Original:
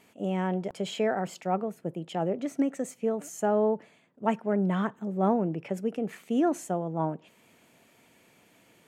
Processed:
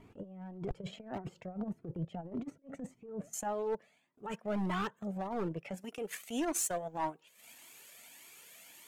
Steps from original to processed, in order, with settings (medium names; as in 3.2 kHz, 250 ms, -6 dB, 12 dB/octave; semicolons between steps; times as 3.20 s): tilt EQ -4 dB/octave, from 3.32 s +1.5 dB/octave, from 5.80 s +4 dB/octave; compressor with a negative ratio -28 dBFS, ratio -0.5; transient shaper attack -7 dB, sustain -11 dB; hard clipper -24 dBFS, distortion -14 dB; Shepard-style flanger rising 1.7 Hz